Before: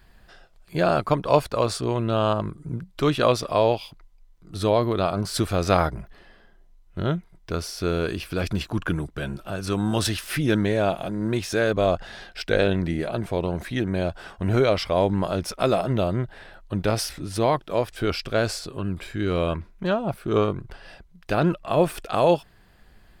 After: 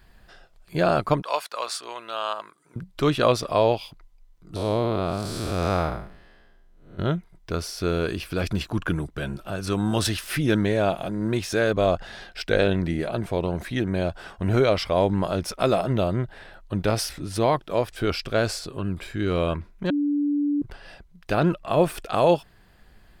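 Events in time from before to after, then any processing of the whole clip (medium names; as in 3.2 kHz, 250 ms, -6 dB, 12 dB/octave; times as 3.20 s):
1.22–2.76 s: high-pass 1 kHz
4.56–6.99 s: spectral blur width 237 ms
19.90–20.62 s: bleep 290 Hz -20 dBFS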